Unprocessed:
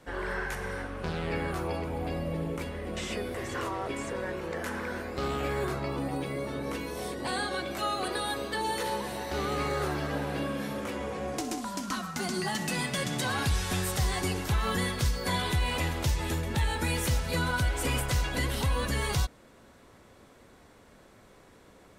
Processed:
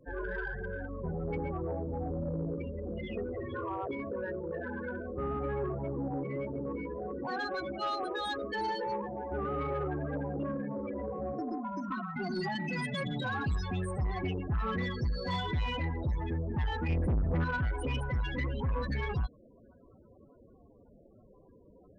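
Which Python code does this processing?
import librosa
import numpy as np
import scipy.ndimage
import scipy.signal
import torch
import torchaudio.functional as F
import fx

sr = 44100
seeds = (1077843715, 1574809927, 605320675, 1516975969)

y = fx.low_shelf(x, sr, hz=310.0, db=11.5, at=(16.89, 17.44))
y = fx.spec_topn(y, sr, count=16)
y = 10.0 ** (-26.0 / 20.0) * np.tanh(y / 10.0 ** (-26.0 / 20.0))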